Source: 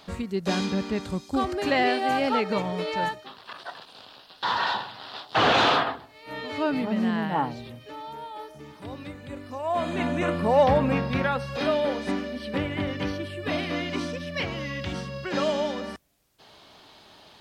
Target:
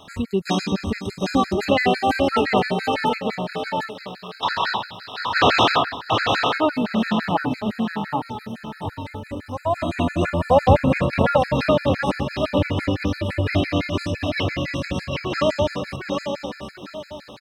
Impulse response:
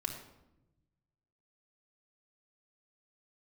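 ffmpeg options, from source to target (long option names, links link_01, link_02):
-af "equalizer=frequency=93:width=2.8:gain=9,aecho=1:1:748|1496|2244|2992:0.631|0.196|0.0606|0.0188,afftfilt=real='re*gt(sin(2*PI*5.9*pts/sr)*(1-2*mod(floor(b*sr/1024/1300),2)),0)':imag='im*gt(sin(2*PI*5.9*pts/sr)*(1-2*mod(floor(b*sr/1024/1300),2)),0)':win_size=1024:overlap=0.75,volume=6.5dB"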